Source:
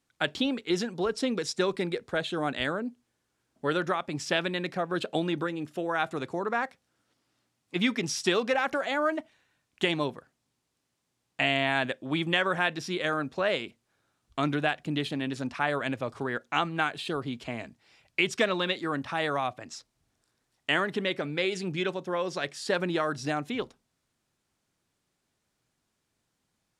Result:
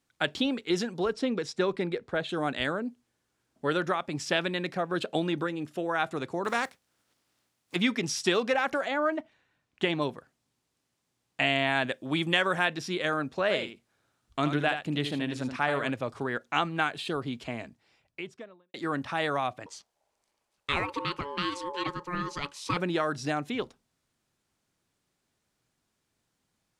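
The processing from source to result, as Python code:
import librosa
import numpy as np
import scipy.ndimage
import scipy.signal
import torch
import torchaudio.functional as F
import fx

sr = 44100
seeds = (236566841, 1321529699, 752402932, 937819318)

y = fx.lowpass(x, sr, hz=2900.0, slope=6, at=(1.13, 2.29))
y = fx.spec_flatten(y, sr, power=0.63, at=(6.44, 7.75), fade=0.02)
y = fx.lowpass(y, sr, hz=3100.0, slope=6, at=(8.88, 10.02))
y = fx.high_shelf(y, sr, hz=5800.0, db=7.0, at=(11.91, 12.65))
y = fx.echo_single(y, sr, ms=77, db=-8.5, at=(13.49, 15.89), fade=0.02)
y = fx.studio_fade_out(y, sr, start_s=17.42, length_s=1.32)
y = fx.ring_mod(y, sr, carrier_hz=710.0, at=(19.66, 22.77))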